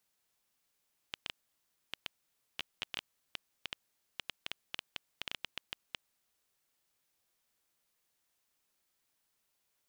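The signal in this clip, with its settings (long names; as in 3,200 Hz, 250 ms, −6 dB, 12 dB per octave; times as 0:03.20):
Geiger counter clicks 6 per second −19 dBFS 4.94 s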